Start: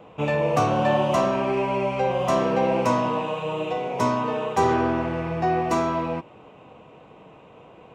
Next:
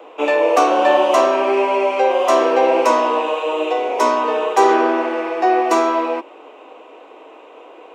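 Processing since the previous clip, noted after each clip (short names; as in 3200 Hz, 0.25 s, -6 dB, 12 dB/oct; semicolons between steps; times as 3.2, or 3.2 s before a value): steep high-pass 290 Hz 48 dB/oct; gain +8 dB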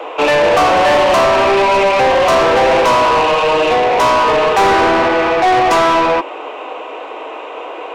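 overdrive pedal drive 27 dB, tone 3700 Hz, clips at -1 dBFS; gain -3.5 dB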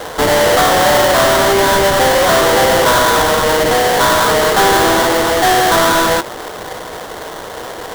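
sample-rate reducer 2500 Hz, jitter 20%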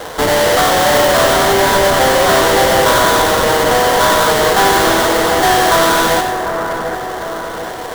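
split-band echo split 1900 Hz, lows 0.745 s, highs 93 ms, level -7 dB; gain -1 dB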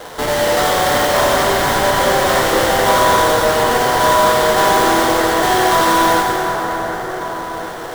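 plate-style reverb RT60 3.8 s, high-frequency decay 0.6×, DRR -0.5 dB; gain -6 dB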